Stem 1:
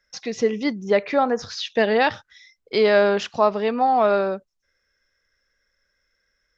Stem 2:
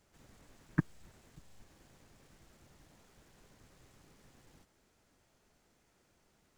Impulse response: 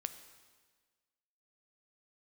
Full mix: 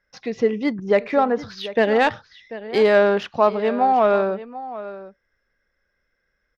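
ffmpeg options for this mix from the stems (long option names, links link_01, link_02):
-filter_complex "[0:a]volume=1.5dB,asplit=2[link_01][link_02];[link_02]volume=-15dB[link_03];[1:a]volume=-13.5dB[link_04];[link_03]aecho=0:1:740:1[link_05];[link_01][link_04][link_05]amix=inputs=3:normalize=0,adynamicsmooth=sensitivity=0.5:basefreq=3100"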